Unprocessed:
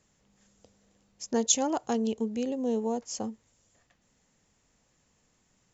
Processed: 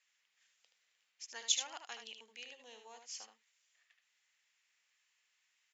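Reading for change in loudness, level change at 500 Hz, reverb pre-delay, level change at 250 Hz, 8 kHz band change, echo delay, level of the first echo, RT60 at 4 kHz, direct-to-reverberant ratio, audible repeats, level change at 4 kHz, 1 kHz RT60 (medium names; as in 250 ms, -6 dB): -10.5 dB, -27.0 dB, no reverb, -40.0 dB, no reading, 76 ms, -7.0 dB, no reverb, no reverb, 1, -2.5 dB, no reverb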